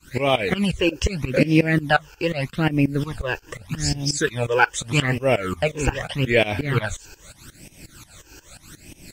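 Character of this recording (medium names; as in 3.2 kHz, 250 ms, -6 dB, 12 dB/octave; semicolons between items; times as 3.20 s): a quantiser's noise floor 8-bit, dither none; phasing stages 12, 0.81 Hz, lowest notch 200–1400 Hz; tremolo saw up 5.6 Hz, depth 95%; Vorbis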